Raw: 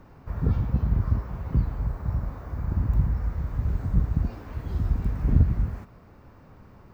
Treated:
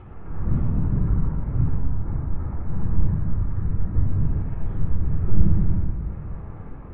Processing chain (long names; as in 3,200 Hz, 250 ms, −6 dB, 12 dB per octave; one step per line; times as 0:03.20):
low-pass filter 2,000 Hz 12 dB per octave
upward compression, threshold −32 dBFS
linear-prediction vocoder at 8 kHz pitch kept
convolution reverb RT60 1.7 s, pre-delay 22 ms, DRR −2.5 dB
level −7 dB